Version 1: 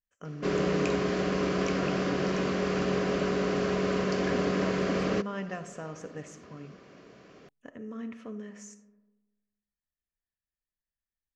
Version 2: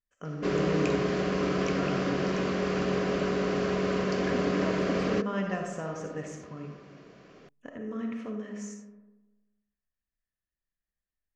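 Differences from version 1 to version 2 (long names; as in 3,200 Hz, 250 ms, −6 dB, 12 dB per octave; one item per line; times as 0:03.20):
speech: send +11.5 dB
master: add high-shelf EQ 9,000 Hz −5.5 dB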